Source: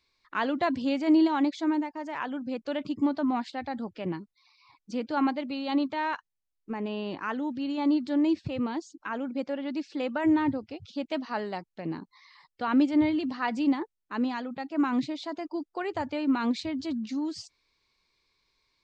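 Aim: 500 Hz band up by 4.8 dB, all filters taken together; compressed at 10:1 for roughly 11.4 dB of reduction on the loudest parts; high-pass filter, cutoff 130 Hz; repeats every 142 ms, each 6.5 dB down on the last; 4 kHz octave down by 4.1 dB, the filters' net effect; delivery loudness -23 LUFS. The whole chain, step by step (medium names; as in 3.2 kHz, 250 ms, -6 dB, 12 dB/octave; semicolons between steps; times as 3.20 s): high-pass 130 Hz; peaking EQ 500 Hz +6.5 dB; peaking EQ 4 kHz -5.5 dB; compression 10:1, threshold -28 dBFS; feedback delay 142 ms, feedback 47%, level -6.5 dB; trim +9.5 dB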